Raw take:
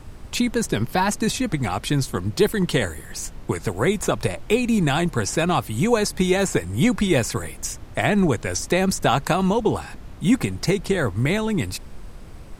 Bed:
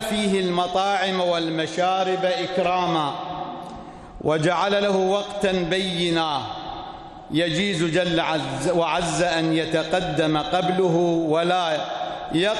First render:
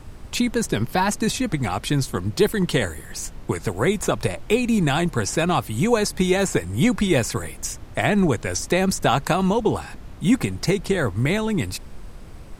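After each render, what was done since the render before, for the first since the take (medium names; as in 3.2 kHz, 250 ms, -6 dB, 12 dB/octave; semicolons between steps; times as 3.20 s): no audible change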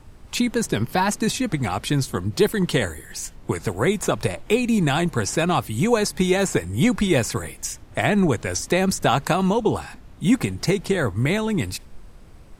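noise print and reduce 6 dB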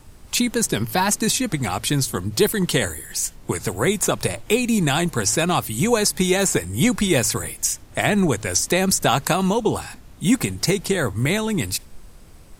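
treble shelf 4.8 kHz +11 dB; de-hum 54.41 Hz, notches 2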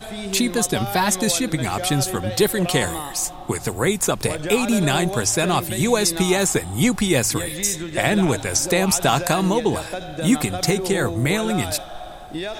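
add bed -8 dB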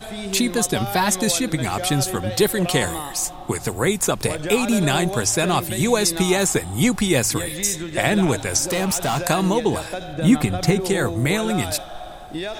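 8.71–9.20 s: hard clipper -18.5 dBFS; 10.13–10.80 s: tone controls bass +5 dB, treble -6 dB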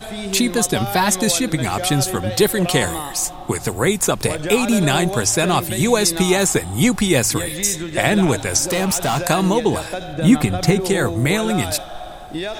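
trim +2.5 dB; peak limiter -1 dBFS, peak gain reduction 1 dB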